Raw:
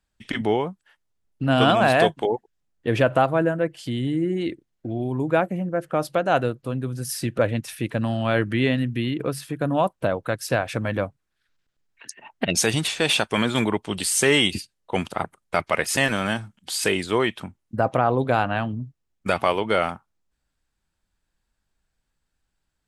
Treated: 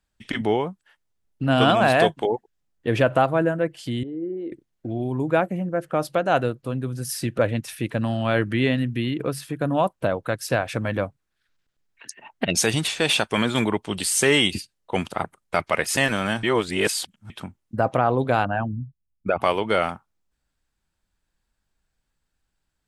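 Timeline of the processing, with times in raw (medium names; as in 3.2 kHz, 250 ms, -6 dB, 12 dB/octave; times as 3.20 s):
4.03–4.52 s: band-pass filter 450 Hz, Q 2.6
16.43–17.30 s: reverse
18.45–19.42 s: resonances exaggerated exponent 2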